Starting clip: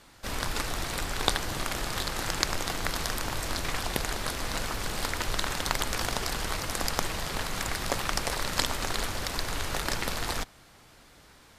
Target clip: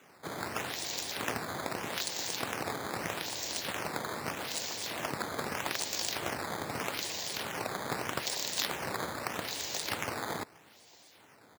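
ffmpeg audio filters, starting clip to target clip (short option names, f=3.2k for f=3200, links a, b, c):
-filter_complex "[0:a]aresample=16000,aeval=exprs='(mod(7.5*val(0)+1,2)-1)/7.5':c=same,aresample=44100,bass=f=250:g=-10,treble=f=4k:g=11,asoftclip=type=tanh:threshold=-15.5dB,equalizer=f=1.3k:t=o:w=0.58:g=-10.5,asplit=2[a][b];[b]adelay=641.4,volume=-23dB,highshelf=f=4k:g=-14.4[c];[a][c]amix=inputs=2:normalize=0,acrusher=samples=9:mix=1:aa=0.000001:lfo=1:lforange=14.4:lforate=0.8,highpass=f=91:w=0.5412,highpass=f=91:w=1.3066,volume=-4.5dB"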